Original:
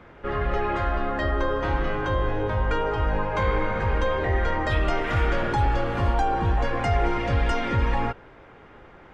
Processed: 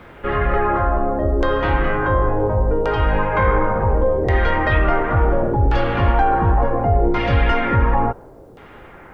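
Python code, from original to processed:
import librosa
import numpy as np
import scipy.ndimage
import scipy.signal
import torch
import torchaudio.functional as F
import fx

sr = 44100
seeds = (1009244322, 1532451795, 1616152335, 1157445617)

y = fx.filter_lfo_lowpass(x, sr, shape='saw_down', hz=0.7, low_hz=420.0, high_hz=4700.0, q=1.2)
y = fx.quant_dither(y, sr, seeds[0], bits=12, dither='none')
y = y * 10.0 ** (6.5 / 20.0)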